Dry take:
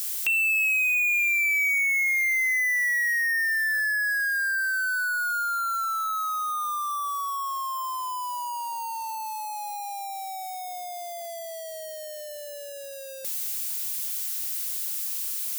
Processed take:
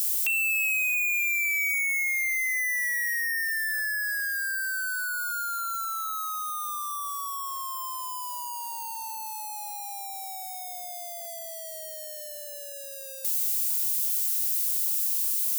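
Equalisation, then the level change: high shelf 4100 Hz +10.5 dB; -6.0 dB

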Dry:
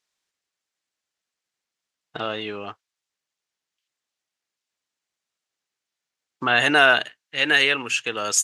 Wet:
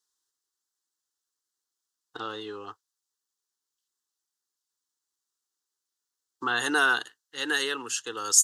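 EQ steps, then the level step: high shelf 3500 Hz +9 dB; fixed phaser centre 630 Hz, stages 6; -4.5 dB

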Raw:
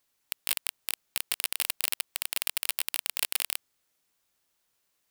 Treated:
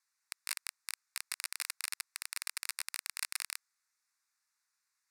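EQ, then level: BPF 650–3500 Hz; differentiator; fixed phaser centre 1300 Hz, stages 4; +12.0 dB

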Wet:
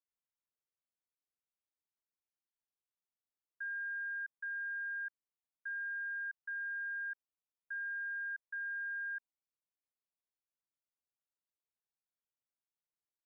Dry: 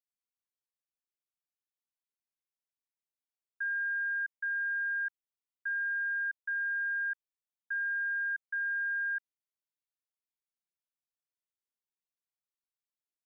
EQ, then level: LPF 1500 Hz; -3.5 dB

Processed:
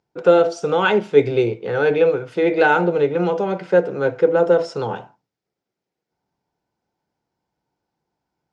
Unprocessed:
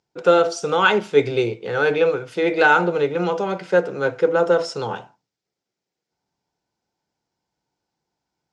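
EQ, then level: high shelf 3100 Hz -11.5 dB; dynamic EQ 1200 Hz, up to -6 dB, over -34 dBFS, Q 2; +3.0 dB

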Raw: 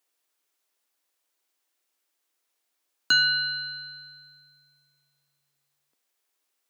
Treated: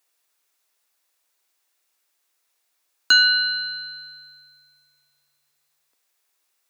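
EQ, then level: HPF 540 Hz 6 dB/oct; notch 3100 Hz, Q 21; +6.0 dB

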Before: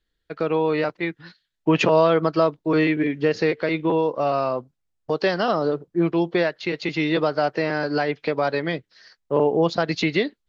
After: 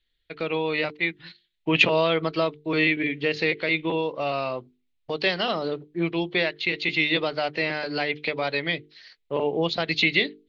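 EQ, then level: low shelf 68 Hz +8 dB; band shelf 2900 Hz +12 dB 1.3 oct; notches 50/100/150/200/250/300/350/400/450 Hz; -5.5 dB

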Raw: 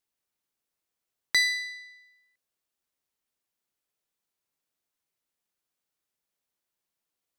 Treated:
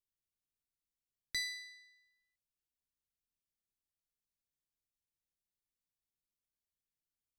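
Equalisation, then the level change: passive tone stack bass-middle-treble 10-0-1; notches 60/120/180/240 Hz; +9.5 dB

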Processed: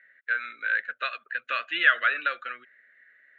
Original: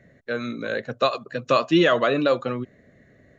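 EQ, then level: resonant high-pass 1500 Hz, resonance Q 3.8; air absorption 170 m; fixed phaser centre 2300 Hz, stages 4; 0.0 dB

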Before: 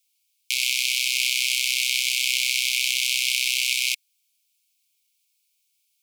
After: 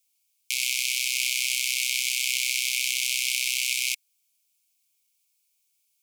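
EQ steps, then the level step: EQ curve 1000 Hz 0 dB, 2700 Hz -10 dB, 4000 Hz -11 dB, 6600 Hz -6 dB; +5.5 dB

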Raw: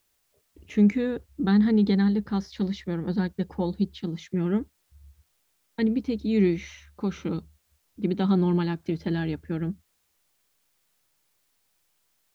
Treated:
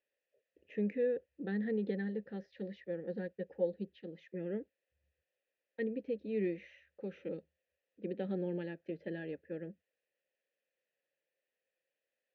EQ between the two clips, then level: vowel filter e; high shelf 3500 Hz -10 dB; dynamic EQ 190 Hz, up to +5 dB, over -52 dBFS, Q 1.1; +2.0 dB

